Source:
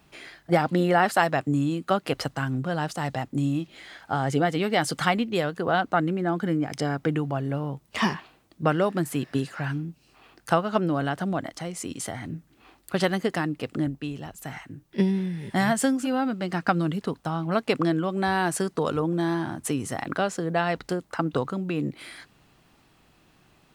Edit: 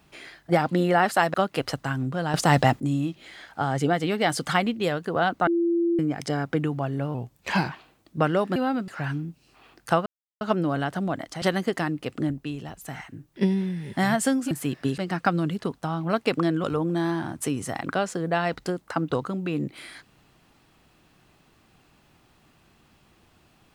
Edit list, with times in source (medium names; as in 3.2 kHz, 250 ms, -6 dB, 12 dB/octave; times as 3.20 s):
1.34–1.86 s: delete
2.86–3.32 s: gain +10.5 dB
5.99–6.51 s: bleep 340 Hz -19.5 dBFS
7.66–8.17 s: speed 88%
9.01–9.48 s: swap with 16.08–16.40 s
10.66 s: insert silence 0.35 s
11.67–12.99 s: delete
18.06–18.87 s: delete